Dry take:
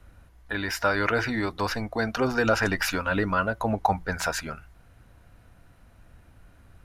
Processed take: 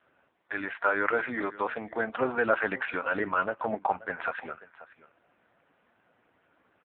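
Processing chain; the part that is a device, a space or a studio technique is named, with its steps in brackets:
satellite phone (band-pass filter 330–3,200 Hz; single-tap delay 534 ms −18.5 dB; AMR narrowband 5.15 kbit/s 8,000 Hz)

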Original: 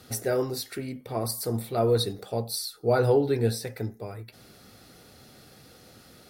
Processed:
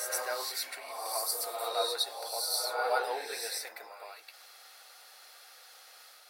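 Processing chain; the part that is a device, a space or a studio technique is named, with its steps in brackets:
ghost voice (reversed playback; convolution reverb RT60 1.2 s, pre-delay 92 ms, DRR 0 dB; reversed playback; high-pass filter 740 Hz 24 dB per octave)
level −1 dB

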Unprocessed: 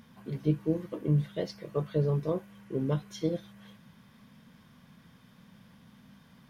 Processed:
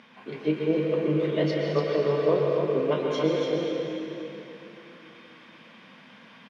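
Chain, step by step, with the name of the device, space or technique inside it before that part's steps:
station announcement (band-pass filter 360–3,900 Hz; parametric band 2,500 Hz +7 dB 0.6 octaves; loudspeakers that aren't time-aligned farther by 11 metres −10 dB, 99 metres −5 dB; convolution reverb RT60 2.9 s, pre-delay 110 ms, DRR 0 dB)
level +7 dB

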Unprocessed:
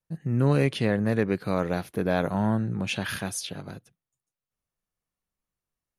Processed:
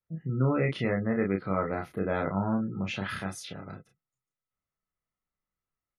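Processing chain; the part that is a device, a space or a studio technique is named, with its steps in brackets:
inside a helmet (high-shelf EQ 5,100 Hz −10 dB; hollow resonant body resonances 1,300/2,000 Hz, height 11 dB, ringing for 30 ms)
gate on every frequency bin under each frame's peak −30 dB strong
ambience of single reflections 31 ms −3.5 dB, 45 ms −17 dB
level −5 dB

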